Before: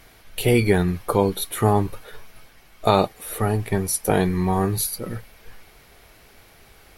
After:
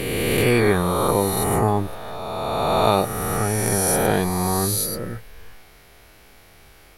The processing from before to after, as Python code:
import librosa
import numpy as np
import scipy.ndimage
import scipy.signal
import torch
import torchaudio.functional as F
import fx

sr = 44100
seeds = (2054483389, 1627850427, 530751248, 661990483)

y = fx.spec_swells(x, sr, rise_s=2.64)
y = fx.peak_eq(y, sr, hz=3400.0, db=-14.0, octaves=0.26, at=(1.08, 1.68))
y = F.gain(torch.from_numpy(y), -3.0).numpy()